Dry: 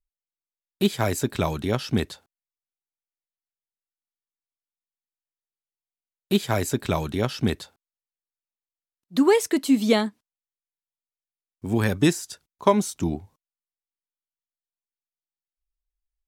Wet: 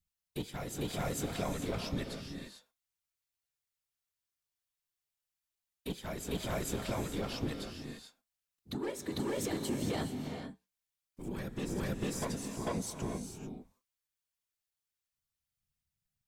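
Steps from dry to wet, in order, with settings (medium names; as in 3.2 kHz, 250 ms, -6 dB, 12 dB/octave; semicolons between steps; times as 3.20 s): saturation -15.5 dBFS, distortion -13 dB; whisper effect; flange 0.16 Hz, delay 4.2 ms, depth 5.1 ms, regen -75%; on a send: reverse echo 448 ms -7 dB; on the sum: peak limiter -20 dBFS, peak gain reduction 7.5 dB; compression 1.5:1, threshold -38 dBFS, peak gain reduction 5 dB; gated-style reverb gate 470 ms rising, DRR 5.5 dB; tape noise reduction on one side only encoder only; trim -1.5 dB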